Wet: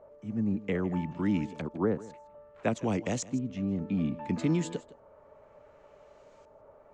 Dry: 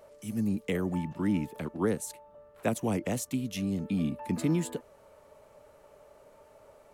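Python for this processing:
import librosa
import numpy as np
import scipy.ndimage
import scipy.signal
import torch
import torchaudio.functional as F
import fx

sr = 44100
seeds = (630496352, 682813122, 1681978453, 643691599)

y = fx.filter_lfo_lowpass(x, sr, shape='saw_up', hz=0.62, low_hz=970.0, high_hz=4800.0, q=0.88)
y = fx.lowpass_res(y, sr, hz=7000.0, q=3.6)
y = y + 10.0 ** (-18.5 / 20.0) * np.pad(y, (int(160 * sr / 1000.0), 0))[:len(y)]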